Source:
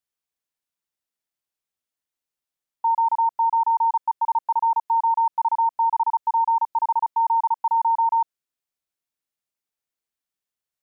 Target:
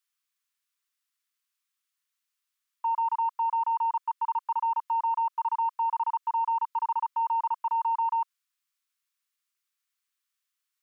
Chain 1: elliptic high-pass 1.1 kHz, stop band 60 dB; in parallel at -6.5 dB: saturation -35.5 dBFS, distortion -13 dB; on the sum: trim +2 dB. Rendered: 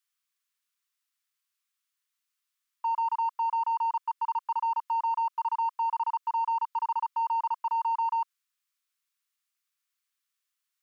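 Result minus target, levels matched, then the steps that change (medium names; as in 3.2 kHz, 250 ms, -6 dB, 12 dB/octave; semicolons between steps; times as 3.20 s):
saturation: distortion +9 dB
change: saturation -28 dBFS, distortion -22 dB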